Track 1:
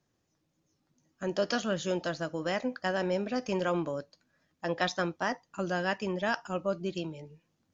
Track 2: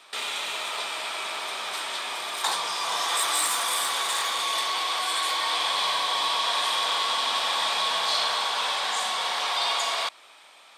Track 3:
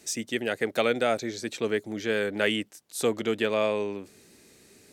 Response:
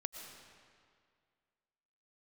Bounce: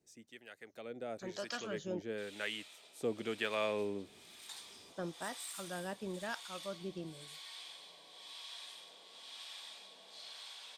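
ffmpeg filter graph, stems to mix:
-filter_complex "[0:a]volume=-8dB,asplit=3[a][b][c];[a]atrim=end=2.02,asetpts=PTS-STARTPTS,afade=t=out:st=2.016:d=0.004:c=hsin[d];[b]atrim=start=2.02:end=4.96,asetpts=PTS-STARTPTS,volume=0[e];[c]atrim=start=4.96,asetpts=PTS-STARTPTS,afade=t=in:d=0.004:c=hsin[f];[d][e][f]concat=n=3:v=0:a=1[g];[1:a]equalizer=f=1.1k:t=o:w=1.4:g=-14,adelay=2050,volume=-19dB[h];[2:a]volume=-5dB,afade=t=in:st=0.81:d=0.5:silence=0.354813,afade=t=in:st=2.9:d=0.63:silence=0.446684[i];[g][h][i]amix=inputs=3:normalize=0,acrossover=split=770[j][k];[j]aeval=exprs='val(0)*(1-0.7/2+0.7/2*cos(2*PI*1*n/s))':c=same[l];[k]aeval=exprs='val(0)*(1-0.7/2-0.7/2*cos(2*PI*1*n/s))':c=same[m];[l][m]amix=inputs=2:normalize=0"

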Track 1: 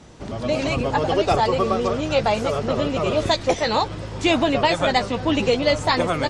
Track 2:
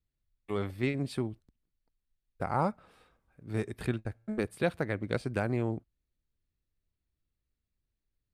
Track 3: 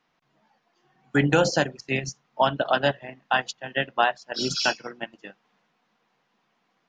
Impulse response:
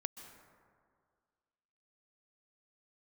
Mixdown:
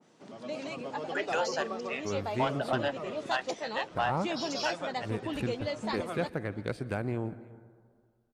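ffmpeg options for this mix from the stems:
-filter_complex "[0:a]highpass=f=170:w=0.5412,highpass=f=170:w=1.3066,volume=-15dB,asplit=2[a][b];[b]volume=-19dB[c];[1:a]adelay=1550,volume=-5dB,asplit=3[d][e][f];[e]volume=-4.5dB[g];[f]volume=-21dB[h];[2:a]highpass=f=510:w=0.5412,highpass=f=510:w=1.3066,volume=-7dB[i];[3:a]atrim=start_sample=2205[j];[g][j]afir=irnorm=-1:irlink=0[k];[c][h]amix=inputs=2:normalize=0,aecho=0:1:337:1[l];[a][d][i][k][l]amix=inputs=5:normalize=0,asoftclip=type=tanh:threshold=-18.5dB,adynamicequalizer=threshold=0.00794:dfrequency=1700:dqfactor=0.7:tfrequency=1700:tqfactor=0.7:attack=5:release=100:ratio=0.375:range=1.5:mode=cutabove:tftype=highshelf"

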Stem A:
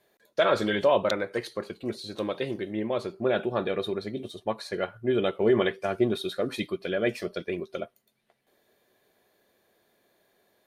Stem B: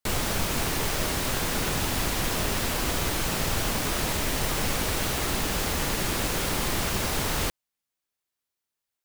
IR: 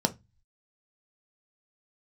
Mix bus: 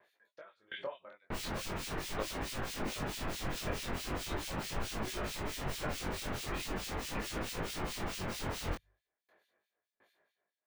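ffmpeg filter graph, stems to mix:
-filter_complex "[0:a]equalizer=f=1.7k:w=0.34:g=15,acompressor=threshold=-23dB:ratio=20,aeval=exprs='val(0)*pow(10,-32*if(lt(mod(1.4*n/s,1),2*abs(1.4)/1000),1-mod(1.4*n/s,1)/(2*abs(1.4)/1000),(mod(1.4*n/s,1)-2*abs(1.4)/1000)/(1-2*abs(1.4)/1000))/20)':c=same,volume=-2.5dB[a];[1:a]equalizer=f=14k:w=0.43:g=-8.5,bandreject=f=50:t=h:w=6,bandreject=f=100:t=h:w=6,bandreject=f=150:t=h:w=6,adelay=1250,volume=-3dB[b];[a][b]amix=inputs=2:normalize=0,acrossover=split=2300[c][d];[c]aeval=exprs='val(0)*(1-1/2+1/2*cos(2*PI*4.6*n/s))':c=same[e];[d]aeval=exprs='val(0)*(1-1/2-1/2*cos(2*PI*4.6*n/s))':c=same[f];[e][f]amix=inputs=2:normalize=0,flanger=delay=18.5:depth=4.9:speed=0.4"

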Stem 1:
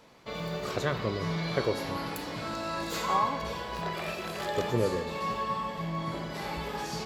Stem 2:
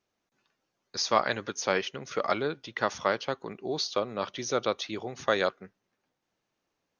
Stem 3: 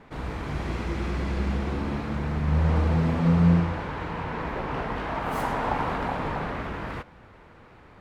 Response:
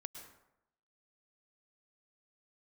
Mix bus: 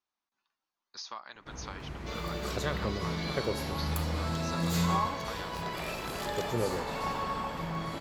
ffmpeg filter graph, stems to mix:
-filter_complex "[0:a]highshelf=f=4.2k:g=8,adelay=1800,volume=-4dB[a];[1:a]equalizer=f=125:t=o:w=1:g=-10,equalizer=f=500:t=o:w=1:g=-8,equalizer=f=1k:t=o:w=1:g=10,equalizer=f=4k:t=o:w=1:g=6,acompressor=threshold=-26dB:ratio=8,volume=-13dB[b];[2:a]adelay=1350,volume=-11dB[c];[a][b][c]amix=inputs=3:normalize=0"

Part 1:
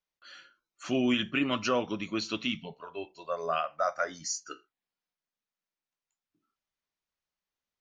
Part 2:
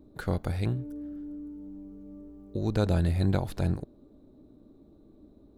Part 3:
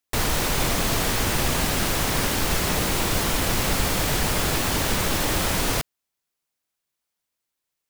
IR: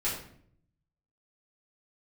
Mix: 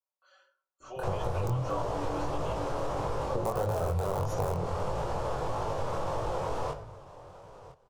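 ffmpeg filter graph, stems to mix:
-filter_complex "[0:a]highpass=630,aecho=1:1:5.3:0.91,volume=-9.5dB,asplit=2[a][b];[b]volume=-17.5dB[c];[1:a]agate=range=-33dB:threshold=-53dB:ratio=3:detection=peak,dynaudnorm=f=120:g=11:m=9dB,adelay=800,volume=-2.5dB,asplit=2[d][e];[e]volume=-17.5dB[f];[2:a]lowpass=4.5k,alimiter=limit=-16.5dB:level=0:latency=1:release=32,adelay=900,volume=-8.5dB,asplit=3[g][h][i];[h]volume=-13dB[j];[i]volume=-17dB[k];[d][g]amix=inputs=2:normalize=0,aeval=exprs='(mod(4.73*val(0)+1,2)-1)/4.73':c=same,acompressor=threshold=-24dB:ratio=6,volume=0dB[l];[3:a]atrim=start_sample=2205[m];[c][f][j]amix=inputs=3:normalize=0[n];[n][m]afir=irnorm=-1:irlink=0[o];[k]aecho=0:1:1006|2012|3018:1|0.19|0.0361[p];[a][l][o][p]amix=inputs=4:normalize=0,equalizer=f=125:t=o:w=1:g=8,equalizer=f=250:t=o:w=1:g=-11,equalizer=f=500:t=o:w=1:g=12,equalizer=f=1k:t=o:w=1:g=10,equalizer=f=2k:t=o:w=1:g=-11,equalizer=f=4k:t=o:w=1:g=-7,flanger=delay=18.5:depth=5.2:speed=1.6,acompressor=threshold=-27dB:ratio=5"

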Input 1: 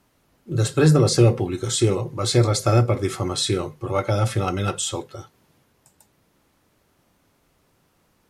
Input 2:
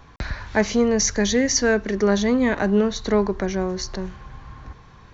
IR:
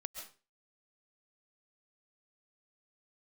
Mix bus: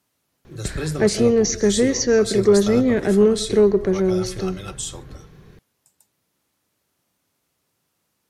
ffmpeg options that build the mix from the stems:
-filter_complex "[0:a]highpass=76,highshelf=f=2.8k:g=10,volume=-11.5dB[a];[1:a]equalizer=f=160:t=o:w=0.67:g=9,equalizer=f=400:t=o:w=0.67:g=11,equalizer=f=1k:t=o:w=0.67:g=-10,asoftclip=type=tanh:threshold=-2dB,adelay=450,volume=-5.5dB,asplit=2[b][c];[c]volume=-4dB[d];[2:a]atrim=start_sample=2205[e];[d][e]afir=irnorm=-1:irlink=0[f];[a][b][f]amix=inputs=3:normalize=0"

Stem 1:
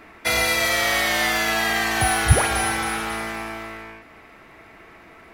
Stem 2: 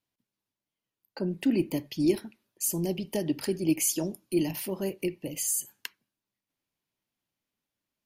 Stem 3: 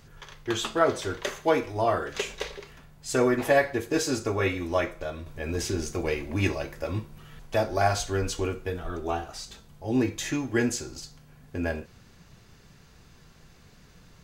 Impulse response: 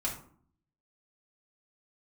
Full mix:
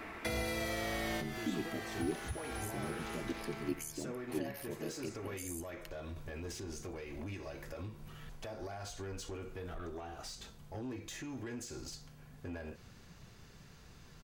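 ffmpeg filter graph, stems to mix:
-filter_complex "[0:a]acompressor=threshold=-24dB:ratio=6,volume=0.5dB[a];[1:a]aeval=exprs='val(0)*sin(2*PI*38*n/s)':c=same,volume=-9dB,asplit=2[b][c];[2:a]acompressor=threshold=-30dB:ratio=6,alimiter=level_in=5.5dB:limit=-24dB:level=0:latency=1:release=144,volume=-5.5dB,asoftclip=type=tanh:threshold=-34.5dB,adelay=900,volume=-2.5dB[d];[c]apad=whole_len=235488[e];[a][e]sidechaincompress=threshold=-48dB:ratio=5:attack=9.5:release=986[f];[f][b][d]amix=inputs=3:normalize=0,acrossover=split=490[g][h];[h]acompressor=threshold=-44dB:ratio=3[i];[g][i]amix=inputs=2:normalize=0"

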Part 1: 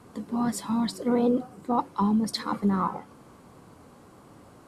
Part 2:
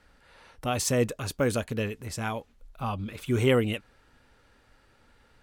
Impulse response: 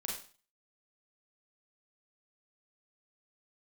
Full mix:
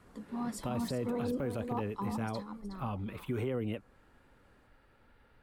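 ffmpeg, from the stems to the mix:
-filter_complex "[0:a]volume=-10dB,afade=t=out:st=1.82:d=0.49:silence=0.334965,asplit=2[a][b];[b]volume=-9dB[c];[1:a]equalizer=f=6.5k:t=o:w=1.4:g=-14,acrossover=split=190|570|1400[d][e][f][g];[d]acompressor=threshold=-35dB:ratio=4[h];[e]acompressor=threshold=-28dB:ratio=4[i];[f]acompressor=threshold=-41dB:ratio=4[j];[g]acompressor=threshold=-47dB:ratio=4[k];[h][i][j][k]amix=inputs=4:normalize=0,volume=-2.5dB[l];[c]aecho=0:1:367:1[m];[a][l][m]amix=inputs=3:normalize=0,alimiter=level_in=1.5dB:limit=-24dB:level=0:latency=1:release=28,volume=-1.5dB"

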